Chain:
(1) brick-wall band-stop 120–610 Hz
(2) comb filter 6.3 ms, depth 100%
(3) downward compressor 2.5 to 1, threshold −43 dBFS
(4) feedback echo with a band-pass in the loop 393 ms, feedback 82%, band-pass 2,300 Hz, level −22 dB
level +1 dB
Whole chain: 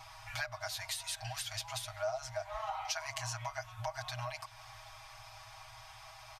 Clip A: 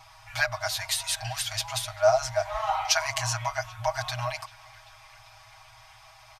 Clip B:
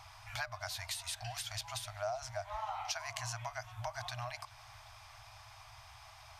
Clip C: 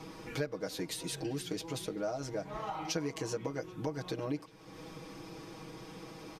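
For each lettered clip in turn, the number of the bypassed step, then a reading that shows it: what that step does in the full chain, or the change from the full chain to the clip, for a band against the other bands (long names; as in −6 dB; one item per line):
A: 3, average gain reduction 6.5 dB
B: 2, change in crest factor +2.0 dB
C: 1, 500 Hz band +7.5 dB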